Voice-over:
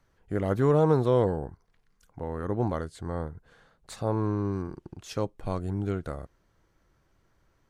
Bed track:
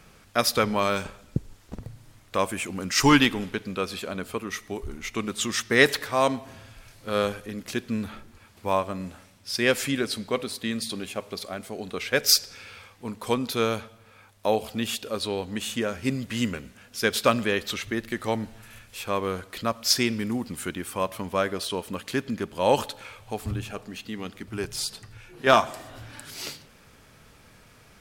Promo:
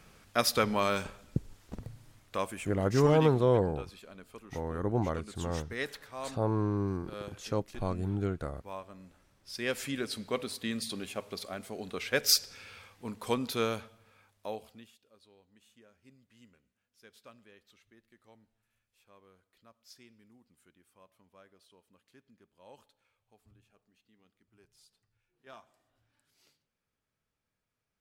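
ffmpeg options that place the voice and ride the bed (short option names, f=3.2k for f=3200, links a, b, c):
-filter_complex "[0:a]adelay=2350,volume=-2dB[a];[1:a]volume=8dB,afade=t=out:st=1.95:d=0.99:silence=0.211349,afade=t=in:st=9.2:d=1.24:silence=0.237137,afade=t=out:st=13.55:d=1.37:silence=0.0398107[b];[a][b]amix=inputs=2:normalize=0"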